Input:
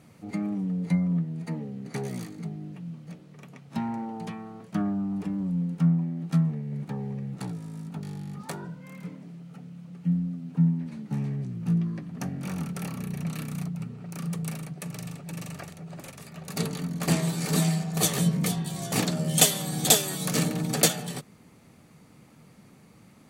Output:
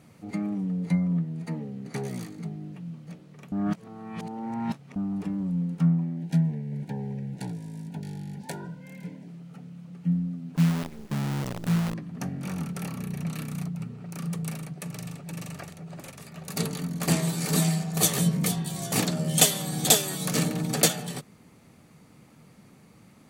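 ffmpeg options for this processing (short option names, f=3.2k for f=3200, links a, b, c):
-filter_complex "[0:a]asettb=1/sr,asplit=3[a][b][c];[a]atrim=end=6.174[d];[b]atrim=start=6.17:end=9.28,asetpts=PTS-STARTPTS,afade=t=in:d=0.004:c=qsin,afade=t=out:st=3.106:d=0.004:c=qsin,asuperstop=centerf=1200:order=20:qfactor=3.3[e];[c]atrim=start=9.276[f];[d][e]acrossfade=d=0.004:c1=hsin:c2=qsin[g];[g][f]acrossfade=d=0.004:c1=qsin:c2=hsin,asettb=1/sr,asplit=3[h][i][j];[h]atrim=end=10.564[k];[i]atrim=start=10.56:end=11.94,asetpts=PTS-STARTPTS,afade=t=in:d=0.004:c=qsin,afade=t=out:st=1.376:d=0.004:c=qsin,acrusher=bits=6:dc=4:mix=0:aa=0.000001[l];[j]atrim=start=11.936[m];[k][l]acrossfade=d=0.004:c1=hsin:c2=qsin[n];[n][m]acrossfade=d=0.004:c1=qsin:c2=hsin,asettb=1/sr,asplit=3[o][p][q];[o]atrim=end=16.374[r];[p]atrim=start=16.37:end=19.08,asetpts=PTS-STARTPTS,afade=t=in:d=0.004:c=qsin,afade=t=out:st=2.706:d=0.004:c=qsin,highshelf=f=7.2k:g=4.5[s];[q]atrim=start=19.076[t];[r][s]acrossfade=d=0.004:c1=hsin:c2=qsin[u];[u][t]acrossfade=d=0.004:c1=qsin:c2=hsin,asplit=3[v][w][x];[v]atrim=end=3.522[y];[w]atrim=start=3.518:end=4.962,asetpts=PTS-STARTPTS,areverse[z];[x]atrim=start=4.958[aa];[y][z]acrossfade=d=0.004:c1=hsin:c2=hsin[ab];[ab][aa]acrossfade=d=0.004:c1=hsin:c2=hsin"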